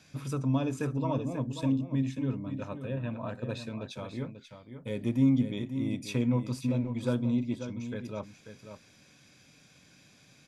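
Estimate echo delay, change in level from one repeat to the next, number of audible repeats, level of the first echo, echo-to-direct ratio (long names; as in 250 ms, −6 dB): 538 ms, repeats not evenly spaced, 1, −9.5 dB, −9.5 dB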